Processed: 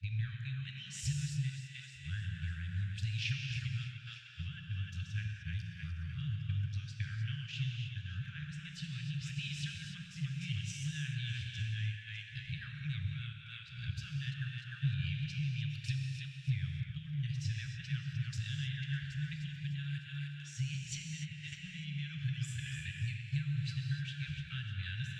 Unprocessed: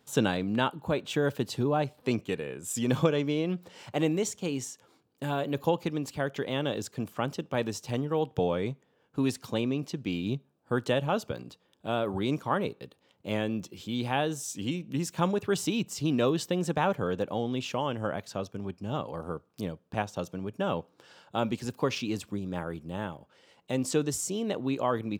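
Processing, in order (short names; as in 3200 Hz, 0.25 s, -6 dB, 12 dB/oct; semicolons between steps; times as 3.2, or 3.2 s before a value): whole clip reversed; LPF 2800 Hz 12 dB/oct; bell 220 Hz -5.5 dB 0.77 oct; split-band echo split 540 Hz, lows 83 ms, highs 0.302 s, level -9 dB; compressor 12:1, threshold -36 dBFS, peak gain reduction 18 dB; gate -45 dBFS, range -6 dB; Chebyshev band-stop 150–1600 Hz, order 5; bell 1700 Hz -8.5 dB 1.6 oct; non-linear reverb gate 0.32 s flat, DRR 1.5 dB; gain +10 dB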